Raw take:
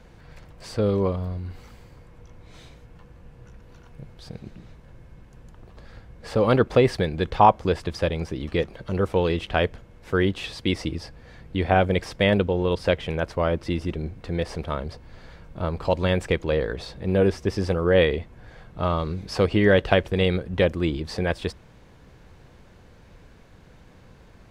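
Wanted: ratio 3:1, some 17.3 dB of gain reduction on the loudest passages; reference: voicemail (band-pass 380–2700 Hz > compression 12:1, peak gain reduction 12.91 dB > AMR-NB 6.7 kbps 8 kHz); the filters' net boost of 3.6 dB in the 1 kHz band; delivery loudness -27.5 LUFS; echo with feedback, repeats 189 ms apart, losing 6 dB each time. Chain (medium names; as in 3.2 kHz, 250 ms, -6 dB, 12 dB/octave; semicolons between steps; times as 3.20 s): peaking EQ 1 kHz +5 dB; compression 3:1, threshold -31 dBFS; band-pass 380–2700 Hz; feedback delay 189 ms, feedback 50%, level -6 dB; compression 12:1, threshold -35 dBFS; trim +15.5 dB; AMR-NB 6.7 kbps 8 kHz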